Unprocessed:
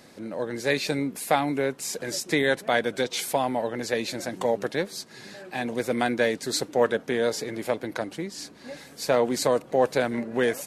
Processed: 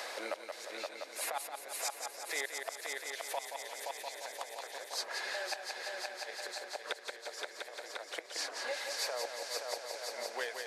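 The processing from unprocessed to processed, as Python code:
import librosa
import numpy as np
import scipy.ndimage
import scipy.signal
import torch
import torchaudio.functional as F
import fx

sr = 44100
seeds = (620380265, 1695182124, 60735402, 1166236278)

p1 = fx.fade_out_tail(x, sr, length_s=1.2)
p2 = fx.high_shelf(p1, sr, hz=5000.0, db=-8.0)
p3 = fx.over_compress(p2, sr, threshold_db=-27.0, ratio=-0.5)
p4 = fx.gate_flip(p3, sr, shuts_db=-22.0, range_db=-25)
p5 = scipy.signal.sosfilt(scipy.signal.butter(4, 580.0, 'highpass', fs=sr, output='sos'), p4)
p6 = p5 + fx.echo_heads(p5, sr, ms=174, heads='first and third', feedback_pct=67, wet_db=-7.5, dry=0)
p7 = fx.band_squash(p6, sr, depth_pct=70)
y = F.gain(torch.from_numpy(p7), 3.5).numpy()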